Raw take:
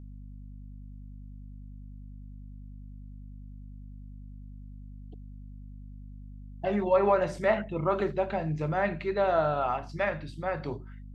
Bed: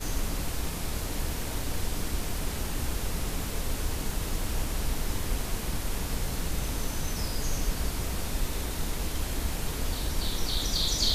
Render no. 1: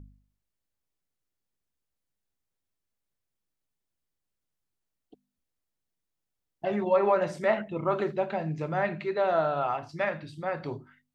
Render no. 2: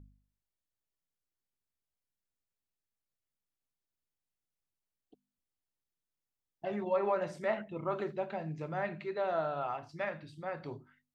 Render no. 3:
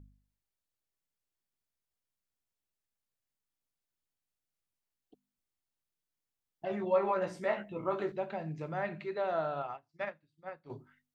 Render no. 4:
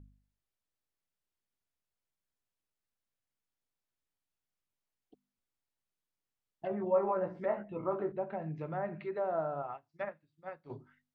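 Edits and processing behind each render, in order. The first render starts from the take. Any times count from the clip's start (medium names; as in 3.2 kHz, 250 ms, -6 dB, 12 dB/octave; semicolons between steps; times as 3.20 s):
de-hum 50 Hz, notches 5
trim -7.5 dB
6.68–8.12 s: doubling 16 ms -5 dB; 9.62–10.70 s: upward expansion 2.5:1, over -51 dBFS
low-pass that closes with the level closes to 1.2 kHz, closed at -32 dBFS; treble shelf 3.9 kHz -6.5 dB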